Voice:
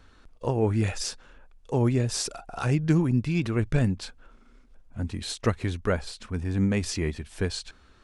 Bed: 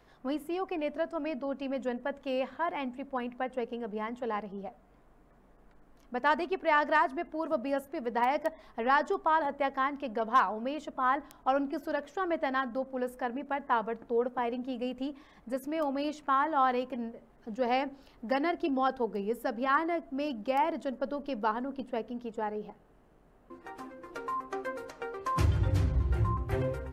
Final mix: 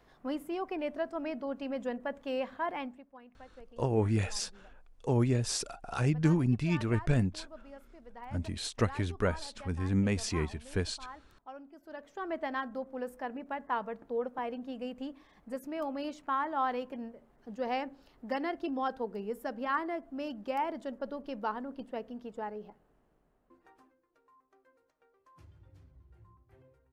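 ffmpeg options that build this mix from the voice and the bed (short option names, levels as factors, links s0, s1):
-filter_complex "[0:a]adelay=3350,volume=0.631[s0];[1:a]volume=4.22,afade=t=out:st=2.78:d=0.27:silence=0.141254,afade=t=in:st=11.8:d=0.56:silence=0.188365,afade=t=out:st=22.42:d=1.63:silence=0.0501187[s1];[s0][s1]amix=inputs=2:normalize=0"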